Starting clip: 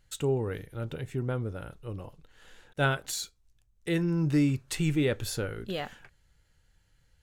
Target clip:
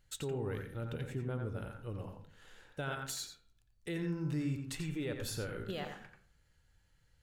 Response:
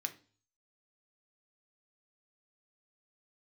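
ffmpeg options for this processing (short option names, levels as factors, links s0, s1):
-filter_complex "[0:a]alimiter=level_in=1.19:limit=0.0631:level=0:latency=1:release=163,volume=0.841,asplit=2[s0][s1];[s1]highshelf=f=3500:g=-10.5[s2];[1:a]atrim=start_sample=2205,asetrate=30429,aresample=44100,adelay=87[s3];[s2][s3]afir=irnorm=-1:irlink=0,volume=0.631[s4];[s0][s4]amix=inputs=2:normalize=0,volume=0.596"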